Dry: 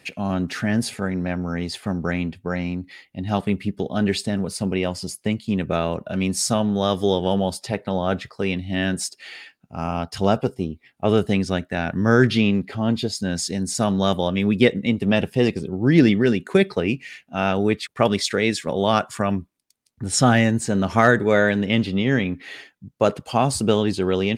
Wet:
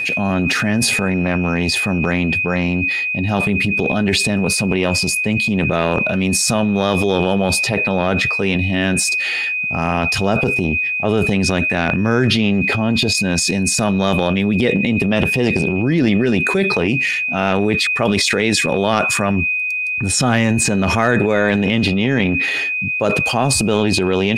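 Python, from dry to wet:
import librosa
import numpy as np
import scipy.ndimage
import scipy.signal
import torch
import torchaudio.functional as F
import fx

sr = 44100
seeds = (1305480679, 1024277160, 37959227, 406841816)

y = x + 10.0 ** (-34.0 / 20.0) * np.sin(2.0 * np.pi * 2500.0 * np.arange(len(x)) / sr)
y = fx.transient(y, sr, attack_db=-4, sustain_db=10)
y = fx.env_flatten(y, sr, amount_pct=70)
y = y * librosa.db_to_amplitude(-2.0)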